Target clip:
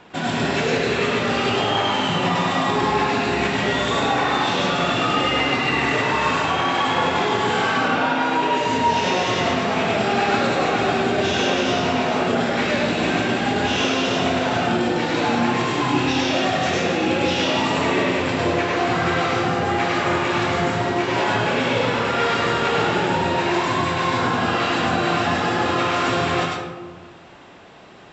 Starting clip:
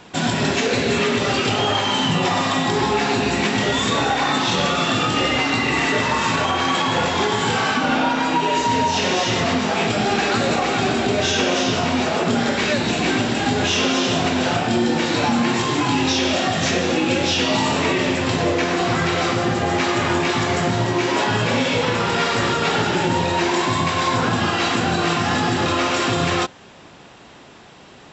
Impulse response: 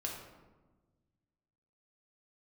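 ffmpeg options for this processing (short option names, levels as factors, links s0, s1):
-filter_complex "[0:a]bass=f=250:g=-4,treble=f=4000:g=-11,asplit=2[s0][s1];[1:a]atrim=start_sample=2205,highshelf=f=5600:g=11,adelay=101[s2];[s1][s2]afir=irnorm=-1:irlink=0,volume=0.75[s3];[s0][s3]amix=inputs=2:normalize=0,volume=0.794"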